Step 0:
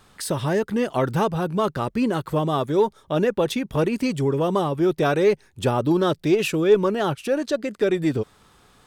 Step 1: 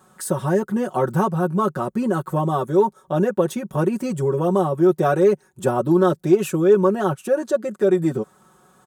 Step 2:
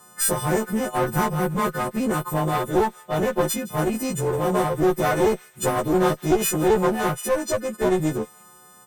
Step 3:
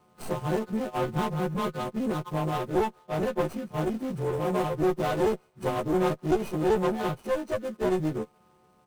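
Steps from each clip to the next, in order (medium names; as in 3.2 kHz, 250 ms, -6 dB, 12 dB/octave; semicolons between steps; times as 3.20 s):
high-pass 110 Hz 12 dB/octave; high-order bell 3.2 kHz -11 dB; comb 5.4 ms, depth 77%
partials quantised in pitch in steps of 3 st; one-sided clip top -24.5 dBFS; feedback echo behind a high-pass 164 ms, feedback 48%, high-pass 2.1 kHz, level -17.5 dB
median filter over 25 samples; trim -5 dB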